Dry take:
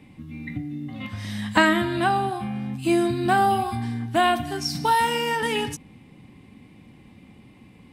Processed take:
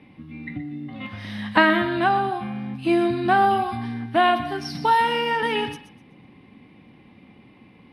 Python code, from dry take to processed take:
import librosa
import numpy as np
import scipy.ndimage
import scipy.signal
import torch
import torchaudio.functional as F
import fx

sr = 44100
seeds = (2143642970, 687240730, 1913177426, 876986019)

p1 = scipy.signal.lfilter(np.full(6, 1.0 / 6), 1.0, x)
p2 = fx.low_shelf(p1, sr, hz=140.0, db=-11.0)
p3 = p2 + fx.echo_thinned(p2, sr, ms=125, feedback_pct=28, hz=770.0, wet_db=-12.5, dry=0)
y = p3 * 10.0 ** (2.5 / 20.0)